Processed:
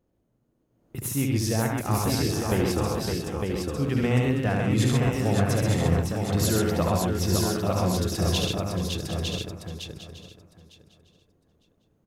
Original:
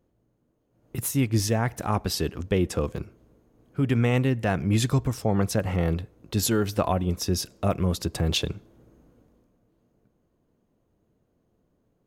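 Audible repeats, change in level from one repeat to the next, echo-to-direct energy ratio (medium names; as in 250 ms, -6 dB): 16, no regular repeats, 3.5 dB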